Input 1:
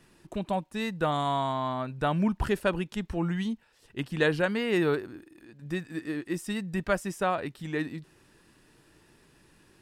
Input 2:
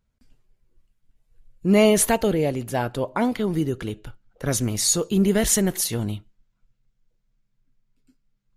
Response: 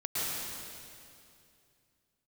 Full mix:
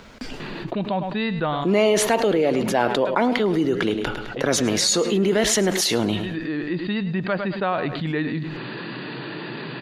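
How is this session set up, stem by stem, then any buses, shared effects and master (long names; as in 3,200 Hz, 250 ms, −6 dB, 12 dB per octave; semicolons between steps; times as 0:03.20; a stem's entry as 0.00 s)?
−9.5 dB, 0.40 s, no send, echo send −16.5 dB, brick-wall band-pass 110–4,800 Hz; automatic ducking −12 dB, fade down 0.20 s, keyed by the second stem
−1.0 dB, 0.00 s, no send, echo send −17.5 dB, three-way crossover with the lows and the highs turned down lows −19 dB, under 230 Hz, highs −18 dB, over 5,700 Hz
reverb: not used
echo: repeating echo 105 ms, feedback 23%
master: envelope flattener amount 70%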